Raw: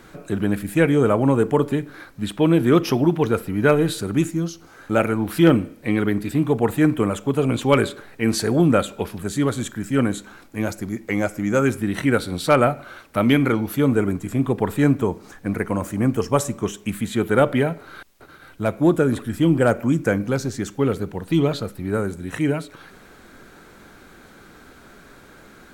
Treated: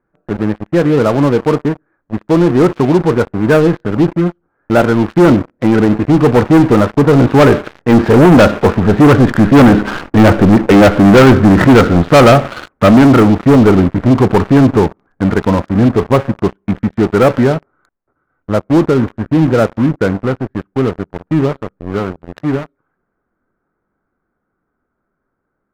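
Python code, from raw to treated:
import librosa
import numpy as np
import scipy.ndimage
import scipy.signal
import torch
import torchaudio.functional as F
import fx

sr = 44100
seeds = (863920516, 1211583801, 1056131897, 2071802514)

y = fx.doppler_pass(x, sr, speed_mps=14, closest_m=14.0, pass_at_s=10.32)
y = scipy.signal.sosfilt(scipy.signal.butter(4, 1600.0, 'lowpass', fs=sr, output='sos'), y)
y = fx.leveller(y, sr, passes=5)
y = y * librosa.db_to_amplitude(8.5)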